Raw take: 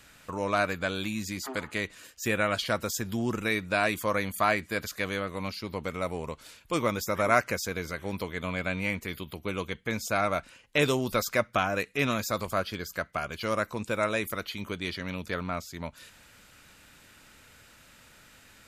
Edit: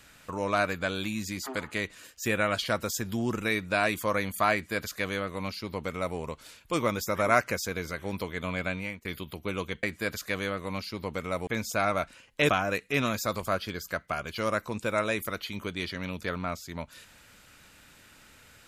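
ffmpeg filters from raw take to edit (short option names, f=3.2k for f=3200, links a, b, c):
-filter_complex "[0:a]asplit=5[a][b][c][d][e];[a]atrim=end=9.05,asetpts=PTS-STARTPTS,afade=t=out:st=8.66:d=0.39:silence=0.11885[f];[b]atrim=start=9.05:end=9.832,asetpts=PTS-STARTPTS,afade=t=in:d=0.004:c=hsin:silence=0.11885[g];[c]atrim=start=4.528:end=6.172[h];[d]atrim=start=9.828:end=10.852[i];[e]atrim=start=11.538[j];[f][g]concat=n=2:v=0:a=1[k];[k][h]acrossfade=d=0.004:c1=hsin:c2=hsin[l];[l][i]acrossfade=d=0.004:c1=hsin:c2=hsin[m];[m][j]acrossfade=d=0.004:c1=hsin:c2=hsin"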